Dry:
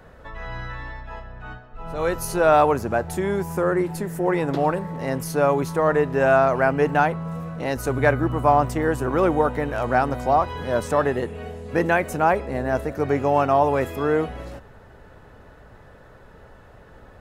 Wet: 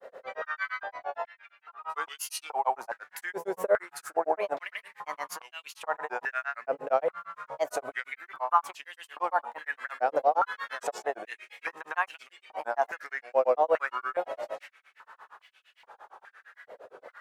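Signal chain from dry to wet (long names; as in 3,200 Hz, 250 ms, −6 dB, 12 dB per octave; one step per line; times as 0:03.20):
downward compressor 4 to 1, threshold −25 dBFS, peak gain reduction 11 dB
granular cloud 111 ms, grains 8.7 per second, spray 106 ms, pitch spread up and down by 3 semitones
high-pass on a step sequencer 2.4 Hz 520–2,800 Hz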